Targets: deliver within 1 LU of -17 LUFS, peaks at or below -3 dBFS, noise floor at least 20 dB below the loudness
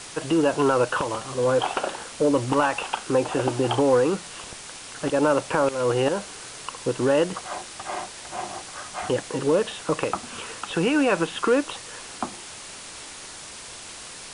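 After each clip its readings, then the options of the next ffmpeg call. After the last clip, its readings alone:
noise floor -40 dBFS; noise floor target -45 dBFS; loudness -24.5 LUFS; peak -9.5 dBFS; loudness target -17.0 LUFS
-> -af "afftdn=nr=6:nf=-40"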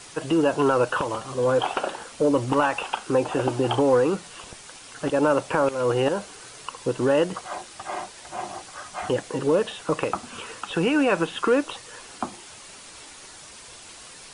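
noise floor -45 dBFS; loudness -24.5 LUFS; peak -9.5 dBFS; loudness target -17.0 LUFS
-> -af "volume=7.5dB,alimiter=limit=-3dB:level=0:latency=1"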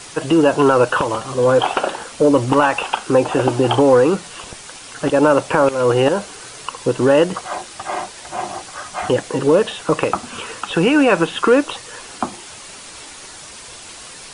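loudness -17.0 LUFS; peak -3.0 dBFS; noise floor -37 dBFS

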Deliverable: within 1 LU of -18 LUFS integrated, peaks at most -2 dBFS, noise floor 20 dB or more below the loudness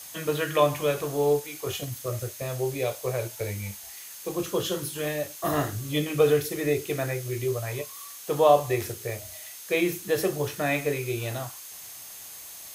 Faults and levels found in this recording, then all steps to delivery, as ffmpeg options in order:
steady tone 6400 Hz; tone level -50 dBFS; noise floor -43 dBFS; noise floor target -48 dBFS; loudness -27.5 LUFS; peak -6.5 dBFS; loudness target -18.0 LUFS
-> -af "bandreject=f=6.4k:w=30"
-af "afftdn=nr=6:nf=-43"
-af "volume=9.5dB,alimiter=limit=-2dB:level=0:latency=1"

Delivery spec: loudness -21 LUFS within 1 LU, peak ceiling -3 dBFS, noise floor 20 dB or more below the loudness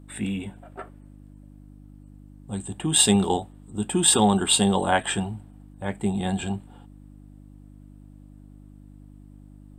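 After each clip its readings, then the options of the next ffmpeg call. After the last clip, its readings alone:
hum 50 Hz; harmonics up to 300 Hz; hum level -46 dBFS; loudness -23.0 LUFS; peak -2.5 dBFS; loudness target -21.0 LUFS
-> -af "bandreject=f=50:t=h:w=4,bandreject=f=100:t=h:w=4,bandreject=f=150:t=h:w=4,bandreject=f=200:t=h:w=4,bandreject=f=250:t=h:w=4,bandreject=f=300:t=h:w=4"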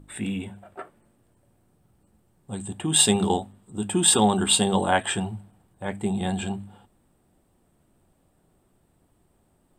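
hum none; loudness -23.0 LUFS; peak -2.5 dBFS; loudness target -21.0 LUFS
-> -af "volume=2dB,alimiter=limit=-3dB:level=0:latency=1"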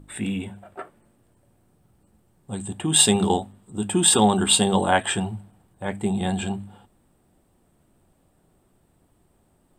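loudness -21.5 LUFS; peak -3.0 dBFS; noise floor -64 dBFS

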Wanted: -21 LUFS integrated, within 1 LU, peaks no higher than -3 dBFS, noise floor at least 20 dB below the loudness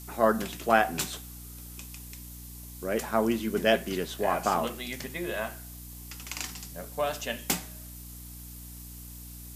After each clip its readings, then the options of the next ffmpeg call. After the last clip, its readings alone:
hum 60 Hz; harmonics up to 300 Hz; hum level -43 dBFS; noise floor -44 dBFS; noise floor target -50 dBFS; loudness -29.5 LUFS; peak -7.0 dBFS; loudness target -21.0 LUFS
-> -af "bandreject=f=60:t=h:w=6,bandreject=f=120:t=h:w=6,bandreject=f=180:t=h:w=6,bandreject=f=240:t=h:w=6,bandreject=f=300:t=h:w=6"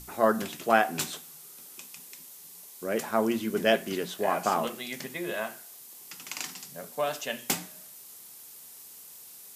hum none; noise floor -49 dBFS; noise floor target -50 dBFS
-> -af "afftdn=nr=6:nf=-49"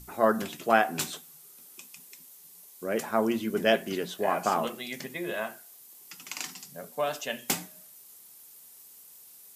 noise floor -52 dBFS; loudness -29.5 LUFS; peak -7.5 dBFS; loudness target -21.0 LUFS
-> -af "volume=8.5dB,alimiter=limit=-3dB:level=0:latency=1"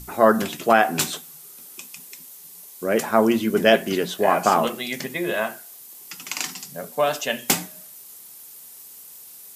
loudness -21.5 LUFS; peak -3.0 dBFS; noise floor -44 dBFS

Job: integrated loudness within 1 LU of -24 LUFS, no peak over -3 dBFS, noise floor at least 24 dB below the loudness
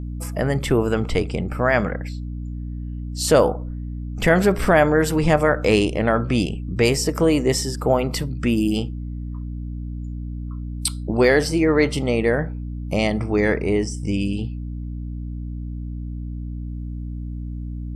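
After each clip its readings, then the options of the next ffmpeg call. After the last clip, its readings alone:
hum 60 Hz; harmonics up to 300 Hz; hum level -27 dBFS; loudness -22.0 LUFS; peak -3.0 dBFS; loudness target -24.0 LUFS
-> -af "bandreject=f=60:t=h:w=4,bandreject=f=120:t=h:w=4,bandreject=f=180:t=h:w=4,bandreject=f=240:t=h:w=4,bandreject=f=300:t=h:w=4"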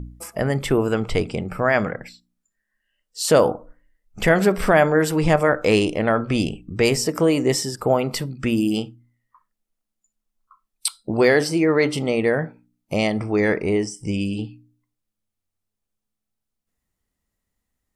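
hum none; loudness -20.5 LUFS; peak -4.0 dBFS; loudness target -24.0 LUFS
-> -af "volume=-3.5dB"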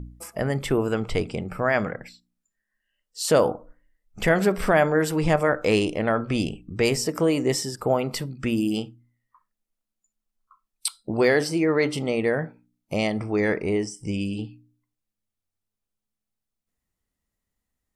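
loudness -24.0 LUFS; peak -7.5 dBFS; noise floor -85 dBFS

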